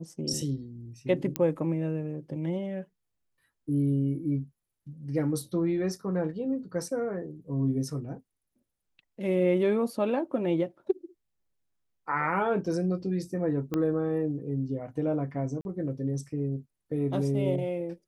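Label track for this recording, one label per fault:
1.360000	1.360000	click −12 dBFS
13.740000	13.740000	click −17 dBFS
15.610000	15.650000	drop-out 41 ms

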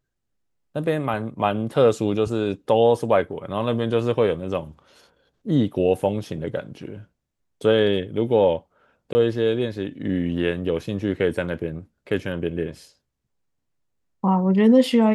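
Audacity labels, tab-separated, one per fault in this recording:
9.130000	9.150000	drop-out 20 ms

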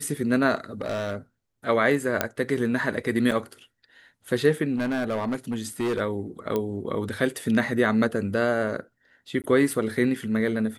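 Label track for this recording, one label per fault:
0.810000	1.170000	clipping −24.5 dBFS
2.210000	2.210000	click −7 dBFS
3.310000	3.320000	drop-out 6 ms
4.760000	6.000000	clipping −22.5 dBFS
6.560000	6.560000	click −14 dBFS
9.420000	9.440000	drop-out 18 ms

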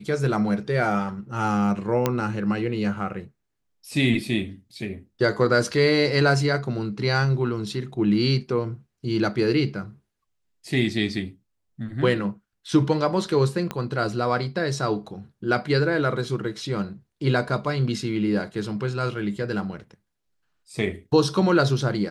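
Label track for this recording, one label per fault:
2.060000	2.060000	click −7 dBFS
13.710000	13.710000	click −13 dBFS

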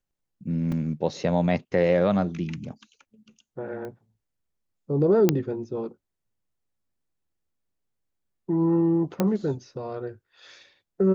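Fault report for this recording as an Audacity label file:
0.720000	0.720000	drop-out 3.7 ms
3.850000	3.850000	click −26 dBFS
5.290000	5.290000	click −6 dBFS
9.200000	9.200000	click −10 dBFS

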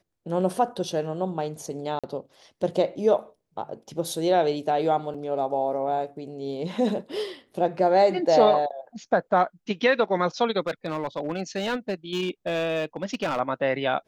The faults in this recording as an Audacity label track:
1.990000	2.040000	drop-out 46 ms
5.140000	5.140000	drop-out 5 ms
10.600000	13.400000	clipping −22 dBFS

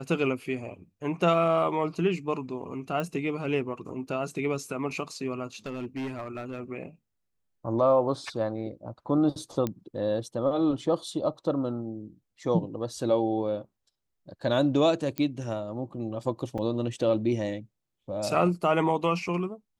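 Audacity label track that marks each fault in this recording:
3.000000	3.000000	click −19 dBFS
5.660000	6.600000	clipping −30 dBFS
9.670000	9.670000	click −16 dBFS
15.180000	15.180000	click −16 dBFS
16.580000	16.580000	drop-out 4.7 ms

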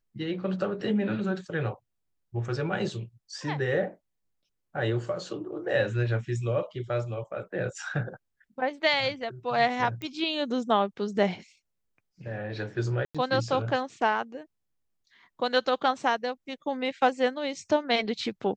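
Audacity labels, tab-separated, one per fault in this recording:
10.020000	10.020000	click −23 dBFS
13.050000	13.150000	drop-out 96 ms

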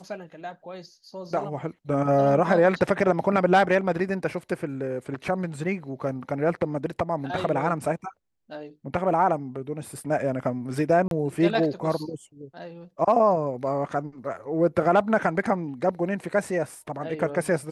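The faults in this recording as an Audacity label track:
11.080000	11.110000	drop-out 32 ms

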